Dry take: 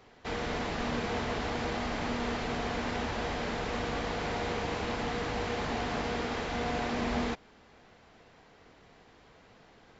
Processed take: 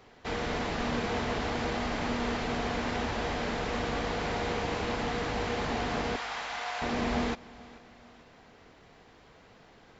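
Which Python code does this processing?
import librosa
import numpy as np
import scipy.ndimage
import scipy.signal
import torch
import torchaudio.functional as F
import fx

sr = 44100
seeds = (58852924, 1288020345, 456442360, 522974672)

p1 = fx.highpass(x, sr, hz=730.0, slope=24, at=(6.16, 6.82))
p2 = p1 + fx.echo_feedback(p1, sr, ms=438, feedback_pct=48, wet_db=-21.0, dry=0)
y = F.gain(torch.from_numpy(p2), 1.5).numpy()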